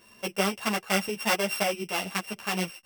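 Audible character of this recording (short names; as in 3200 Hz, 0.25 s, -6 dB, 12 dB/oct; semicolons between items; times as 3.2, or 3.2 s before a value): a buzz of ramps at a fixed pitch in blocks of 16 samples; tremolo saw up 3.7 Hz, depth 40%; a shimmering, thickened sound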